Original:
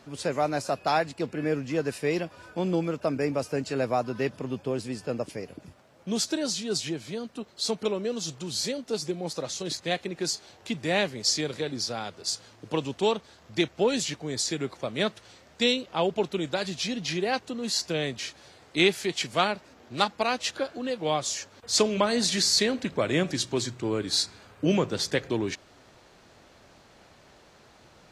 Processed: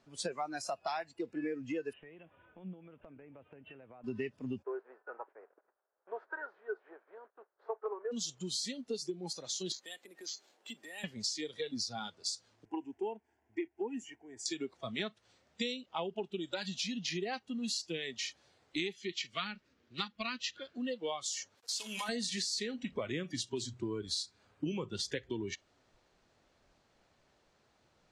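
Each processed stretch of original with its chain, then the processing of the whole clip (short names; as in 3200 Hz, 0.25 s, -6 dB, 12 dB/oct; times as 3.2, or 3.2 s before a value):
1.93–4.04 steep low-pass 3400 Hz 96 dB/oct + compressor 16:1, threshold -34 dBFS
4.62–8.11 spectral contrast lowered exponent 0.67 + gate -46 dBFS, range -10 dB + Chebyshev band-pass 400–1600 Hz, order 3
9.72–11.04 HPF 250 Hz 24 dB/oct + compressor 4:1, threshold -36 dBFS + careless resampling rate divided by 4×, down none, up hold
12.65–14.46 HPF 69 Hz 6 dB/oct + high shelf 2200 Hz -11 dB + fixed phaser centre 810 Hz, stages 8
18.93–20.75 LPF 5900 Hz + bell 760 Hz -11.5 dB 0.9 oct
21.55–22.09 block floating point 3-bit + HPF 620 Hz 6 dB/oct + compressor 3:1, threshold -30 dBFS
whole clip: spectral noise reduction 16 dB; LPF 10000 Hz 24 dB/oct; compressor 8:1, threshold -34 dBFS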